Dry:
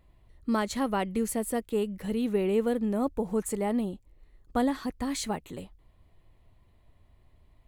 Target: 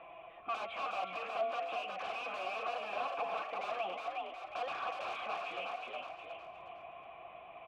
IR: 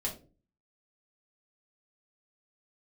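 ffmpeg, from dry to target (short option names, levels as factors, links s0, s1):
-filter_complex "[0:a]acrossover=split=590|1200[s0][s1][s2];[s0]acompressor=threshold=0.00891:ratio=4[s3];[s1]acompressor=threshold=0.00398:ratio=4[s4];[s2]acompressor=threshold=0.00398:ratio=4[s5];[s3][s4][s5]amix=inputs=3:normalize=0,equalizer=f=2200:w=1.3:g=8,bandreject=f=227.3:t=h:w=4,bandreject=f=454.6:t=h:w=4,bandreject=f=681.9:t=h:w=4,bandreject=f=909.2:t=h:w=4,bandreject=f=1136.5:t=h:w=4,bandreject=f=1363.8:t=h:w=4,bandreject=f=1591.1:t=h:w=4,bandreject=f=1818.4:t=h:w=4,bandreject=f=2045.7:t=h:w=4,bandreject=f=2273:t=h:w=4,bandreject=f=2500.3:t=h:w=4,bandreject=f=2727.6:t=h:w=4,bandreject=f=2954.9:t=h:w=4,bandreject=f=3182.2:t=h:w=4,bandreject=f=3409.5:t=h:w=4,bandreject=f=3636.8:t=h:w=4,bandreject=f=3864.1:t=h:w=4,bandreject=f=4091.4:t=h:w=4,bandreject=f=4318.7:t=h:w=4,bandreject=f=4546:t=h:w=4,bandreject=f=4773.3:t=h:w=4,bandreject=f=5000.6:t=h:w=4,bandreject=f=5227.9:t=h:w=4,bandreject=f=5455.2:t=h:w=4,bandreject=f=5682.5:t=h:w=4,bandreject=f=5909.8:t=h:w=4,bandreject=f=6137.1:t=h:w=4,bandreject=f=6364.4:t=h:w=4,bandreject=f=6591.7:t=h:w=4,bandreject=f=6819:t=h:w=4,bandreject=f=7046.3:t=h:w=4,bandreject=f=7273.6:t=h:w=4,bandreject=f=7500.9:t=h:w=4,bandreject=f=7728.2:t=h:w=4,bandreject=f=7955.5:t=h:w=4,bandreject=f=8182.8:t=h:w=4,acrossover=split=590[s6][s7];[s6]acompressor=threshold=0.00178:ratio=6[s8];[s8][s7]amix=inputs=2:normalize=0,aecho=1:1:6:0.8,aresample=8000,aresample=44100,aeval=exprs='(mod(84.1*val(0)+1,2)-1)/84.1':c=same,asplit=5[s9][s10][s11][s12][s13];[s10]adelay=364,afreqshift=62,volume=0.447[s14];[s11]adelay=728,afreqshift=124,volume=0.157[s15];[s12]adelay=1092,afreqshift=186,volume=0.055[s16];[s13]adelay=1456,afreqshift=248,volume=0.0191[s17];[s9][s14][s15][s16][s17]amix=inputs=5:normalize=0,asplit=2[s18][s19];[s19]highpass=f=720:p=1,volume=15.8,asoftclip=type=tanh:threshold=0.0335[s20];[s18][s20]amix=inputs=2:normalize=0,lowpass=f=1900:p=1,volume=0.501,asplit=3[s21][s22][s23];[s21]bandpass=f=730:t=q:w=8,volume=1[s24];[s22]bandpass=f=1090:t=q:w=8,volume=0.501[s25];[s23]bandpass=f=2440:t=q:w=8,volume=0.355[s26];[s24][s25][s26]amix=inputs=3:normalize=0,lowshelf=f=120:g=10,volume=3.98"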